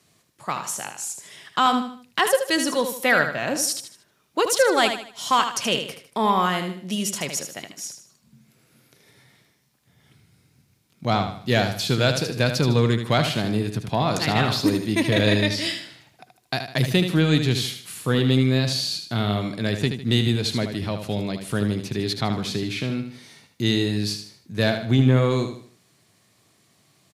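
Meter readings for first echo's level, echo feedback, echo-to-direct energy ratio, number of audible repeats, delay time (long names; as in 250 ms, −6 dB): −8.0 dB, 37%, −7.5 dB, 4, 77 ms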